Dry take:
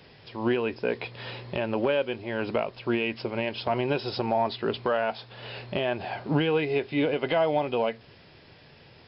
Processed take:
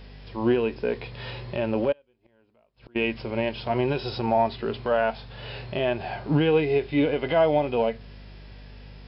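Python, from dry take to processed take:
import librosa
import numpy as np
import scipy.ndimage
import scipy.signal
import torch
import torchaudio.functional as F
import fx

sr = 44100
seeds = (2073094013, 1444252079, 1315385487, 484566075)

y = fx.add_hum(x, sr, base_hz=50, snr_db=19)
y = fx.gate_flip(y, sr, shuts_db=-28.0, range_db=-36, at=(1.92, 2.96))
y = fx.hpss(y, sr, part='percussive', gain_db=-10)
y = y * librosa.db_to_amplitude(4.5)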